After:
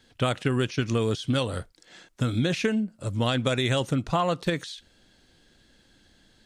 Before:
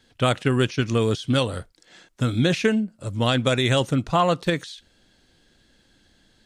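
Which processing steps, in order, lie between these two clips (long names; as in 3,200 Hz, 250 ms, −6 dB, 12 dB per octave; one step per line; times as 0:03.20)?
downward compressor 3 to 1, threshold −22 dBFS, peak gain reduction 6 dB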